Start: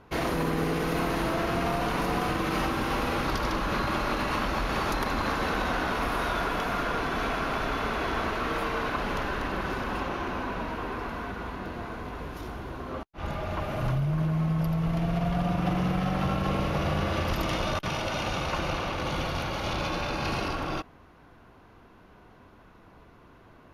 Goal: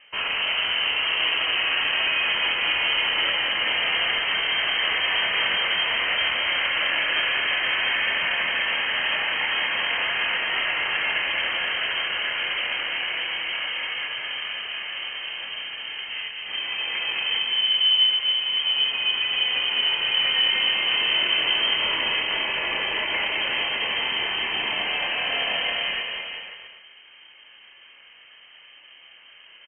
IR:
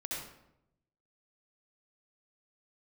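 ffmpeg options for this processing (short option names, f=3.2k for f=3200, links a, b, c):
-filter_complex "[0:a]aemphasis=mode=production:type=75fm,atempo=0.8,asplit=2[a][b];[b]adelay=26,volume=-7dB[c];[a][c]amix=inputs=2:normalize=0,aecho=1:1:210|388.5|540.2|669.2|778.8:0.631|0.398|0.251|0.158|0.1,asplit=2[d][e];[1:a]atrim=start_sample=2205[f];[e][f]afir=irnorm=-1:irlink=0,volume=-9.5dB[g];[d][g]amix=inputs=2:normalize=0,lowpass=f=2.7k:t=q:w=0.5098,lowpass=f=2.7k:t=q:w=0.6013,lowpass=f=2.7k:t=q:w=0.9,lowpass=f=2.7k:t=q:w=2.563,afreqshift=-3200"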